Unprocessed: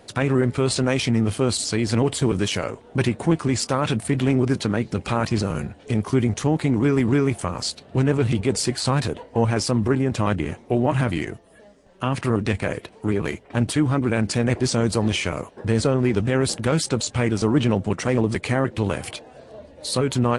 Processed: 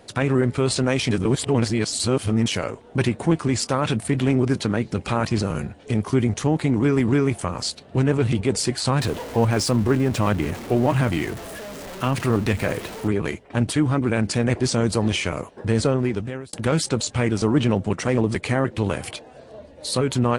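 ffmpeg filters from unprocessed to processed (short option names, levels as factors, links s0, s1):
-filter_complex "[0:a]asettb=1/sr,asplit=3[s0][s1][s2];[s0]atrim=end=9.004[s3];[s1]atrim=start=9:end=13.08,asetpts=PTS-STARTPTS,afade=t=in:d=0.004:c=qsin,afade=t=out:st=4.076:d=0.004:c=qsin,aeval=exprs='val(0)+0.5*0.0299*sgn(val(0))':c=same[s4];[s2]atrim=start=13.076[s5];[s3][s4]acrossfade=d=0.004:c1=hsin:c2=qsin[s6];[s6][s5]acrossfade=d=0.004:c1=qsin:c2=hsin,asplit=4[s7][s8][s9][s10];[s7]atrim=end=1.112[s11];[s8]atrim=start=1.108:end=2.462,asetpts=PTS-STARTPTS,areverse[s12];[s9]atrim=start=2.458:end=16.53,asetpts=PTS-STARTPTS,afade=t=out:st=13.442:d=0.63[s13];[s10]atrim=start=16.53,asetpts=PTS-STARTPTS,afade=t=in:d=0.004:c=hsin[s14];[s11][s12]acrossfade=d=0.004:c1=hsin:c2=hsin[s15];[s13][s14]concat=n=2:v=0:a=1[s16];[s15][s16]acrossfade=d=0.004:c1=hsin:c2=hsin"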